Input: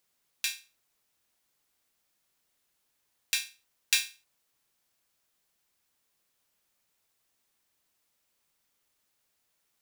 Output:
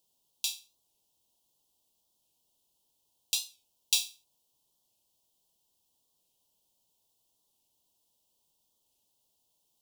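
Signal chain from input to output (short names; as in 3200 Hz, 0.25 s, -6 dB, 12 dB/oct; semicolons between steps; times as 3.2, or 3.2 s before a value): Chebyshev band-stop 970–3000 Hz, order 3; in parallel at -6.5 dB: soft clip -14.5 dBFS, distortion -17 dB; on the sum: record warp 45 rpm, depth 100 cents; gain -2 dB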